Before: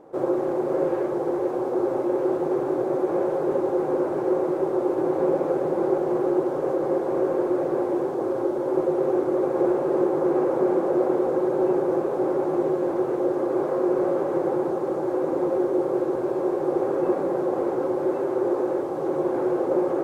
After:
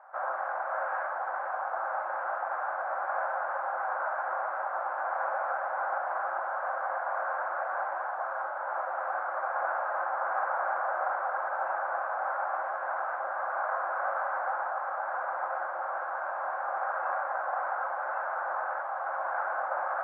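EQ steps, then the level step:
elliptic high-pass filter 660 Hz, stop band 40 dB
low-pass with resonance 1,500 Hz, resonance Q 4.6
high-frequency loss of the air 170 metres
0.0 dB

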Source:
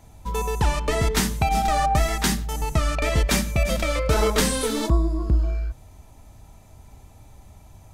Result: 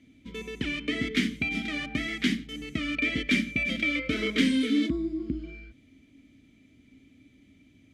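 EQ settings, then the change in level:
dynamic equaliser 1,700 Hz, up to +3 dB, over −35 dBFS, Q 0.77
formant filter i
+9.0 dB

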